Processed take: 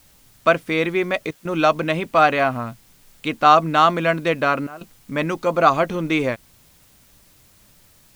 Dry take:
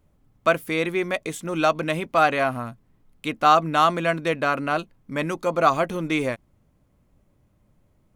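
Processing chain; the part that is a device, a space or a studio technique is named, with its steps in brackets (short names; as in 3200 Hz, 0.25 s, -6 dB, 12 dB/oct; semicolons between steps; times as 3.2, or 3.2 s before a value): worn cassette (LPF 6000 Hz 12 dB/oct; wow and flutter 22 cents; level dips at 1.31/4.67, 0.139 s -17 dB; white noise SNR 34 dB); gain +3.5 dB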